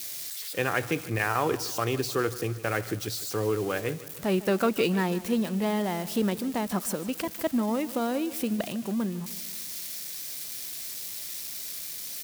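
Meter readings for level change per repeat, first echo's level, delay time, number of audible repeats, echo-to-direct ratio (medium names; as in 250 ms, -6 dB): -5.5 dB, -17.0 dB, 152 ms, 4, -15.5 dB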